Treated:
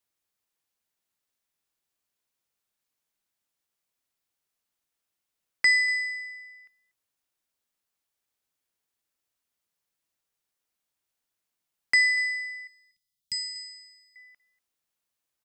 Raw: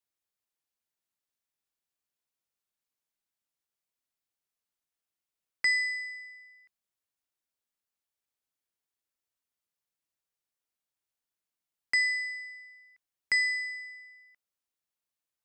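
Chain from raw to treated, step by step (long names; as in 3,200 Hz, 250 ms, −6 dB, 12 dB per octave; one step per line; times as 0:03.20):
0:12.67–0:14.16: elliptic band-stop filter 190–3,400 Hz, stop band 40 dB
on a send: single-tap delay 240 ms −20.5 dB
on the sum: level +5.5 dB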